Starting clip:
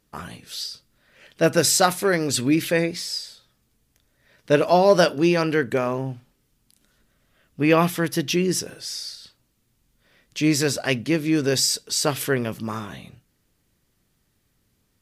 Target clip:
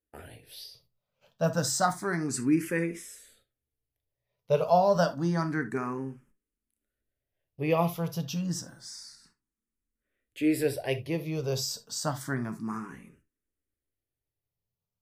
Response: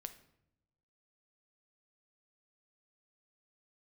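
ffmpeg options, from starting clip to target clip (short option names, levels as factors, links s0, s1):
-filter_complex "[0:a]agate=range=0.178:threshold=0.00316:ratio=16:detection=peak,equalizer=f=4000:t=o:w=1.6:g=-8.5[s0];[1:a]atrim=start_sample=2205,atrim=end_sample=3528,asetrate=42777,aresample=44100[s1];[s0][s1]afir=irnorm=-1:irlink=0,asplit=2[s2][s3];[s3]afreqshift=0.29[s4];[s2][s4]amix=inputs=2:normalize=1"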